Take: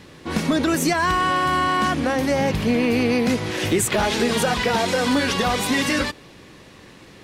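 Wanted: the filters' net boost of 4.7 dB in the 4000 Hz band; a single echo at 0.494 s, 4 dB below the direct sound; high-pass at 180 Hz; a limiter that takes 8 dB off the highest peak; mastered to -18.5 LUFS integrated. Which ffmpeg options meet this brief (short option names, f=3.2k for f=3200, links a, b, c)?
-af "highpass=180,equalizer=f=4k:t=o:g=6,alimiter=limit=-15dB:level=0:latency=1,aecho=1:1:494:0.631,volume=3.5dB"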